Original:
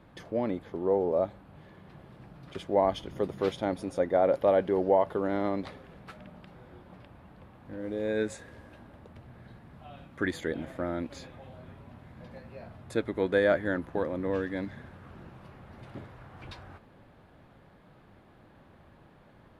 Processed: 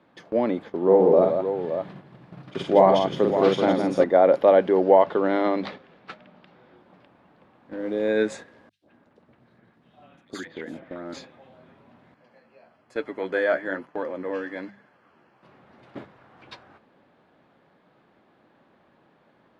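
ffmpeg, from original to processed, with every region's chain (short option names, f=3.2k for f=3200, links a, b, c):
-filter_complex "[0:a]asettb=1/sr,asplit=3[a][b][c];[a]atrim=end=0.824[d];[b]atrim=start=0.82:end=4.04,asetpts=PTS-STARTPTS,afade=t=in:d=0.004:c=qsin,afade=t=out:st=3.216:d=0.004:c=qsin,equalizer=f=140:t=o:w=0.89:g=8.5,aecho=1:1:47|166|571:0.631|0.501|0.376,atrim=end_sample=142002[e];[c]atrim=start=4.036[f];[d][e]acrossfade=d=0.004:c1=hsin:c2=qsin[g];[g][f]acrossfade=d=0.004:c1=qsin:c2=hsin,asettb=1/sr,asplit=3[h][i][j];[h]atrim=end=4.874[k];[i]atrim=start=4.87:end=6.76,asetpts=PTS-STARTPTS,afade=t=in:d=0.004:c=qsin,afade=t=out:st=1.886:d=0.004:c=qsin,lowpass=4.5k,highshelf=f=3k:g=7.5[l];[j]atrim=start=6.756[m];[k][l]acrossfade=d=0.004:c1=hsin:c2=qsin[n];[n][m]acrossfade=d=0.004:c1=qsin:c2=hsin,asettb=1/sr,asplit=3[o][p][q];[o]atrim=end=8.694[r];[p]atrim=start=8.69:end=11.14,asetpts=PTS-STARTPTS,afade=t=in:d=0.004:c=qsin,afade=t=out:st=2.446:d=0.004:c=qsin,agate=range=-33dB:threshold=-48dB:ratio=3:release=100:detection=peak,acompressor=threshold=-36dB:ratio=10:attack=3.2:release=140:knee=1:detection=peak,acrossover=split=820|3400[s][t][u];[s]adelay=120[v];[t]adelay=170[w];[v][w][u]amix=inputs=3:normalize=0,atrim=end_sample=108045[x];[q]atrim=start=11.136[y];[r][x]acrossfade=d=0.004:c1=hsin:c2=qsin[z];[z][y]acrossfade=d=0.004:c1=qsin:c2=hsin,asettb=1/sr,asplit=3[aa][ab][ac];[aa]atrim=end=12.144[ad];[ab]atrim=start=12.14:end=15.43,asetpts=PTS-STARTPTS,afade=t=in:d=0.004:c=qsin,afade=t=out:st=3.286:d=0.004:c=qsin,lowshelf=f=300:g=-9.5,flanger=delay=6.6:depth=7.8:regen=47:speed=1.1:shape=sinusoidal,asuperstop=centerf=3700:order=4:qfactor=6.7[ae];[ac]atrim=start=15.426[af];[ad][ae]acrossfade=d=0.004:c1=hsin:c2=qsin[ag];[ag][af]acrossfade=d=0.004:c1=qsin:c2=hsin,acrossover=split=160 7100:gain=0.1 1 0.178[ah][ai][aj];[ah][ai][aj]amix=inputs=3:normalize=0,agate=range=-9dB:threshold=-45dB:ratio=16:detection=peak,bandreject=f=50:t=h:w=6,bandreject=f=100:t=h:w=6,bandreject=f=150:t=h:w=6,bandreject=f=200:t=h:w=6,volume=7.5dB"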